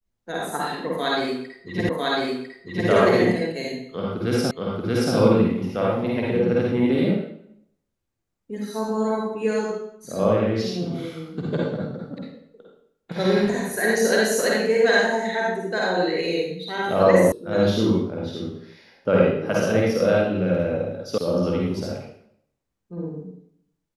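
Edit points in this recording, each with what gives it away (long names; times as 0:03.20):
0:01.89: the same again, the last 1 s
0:04.51: the same again, the last 0.63 s
0:17.32: cut off before it has died away
0:21.18: cut off before it has died away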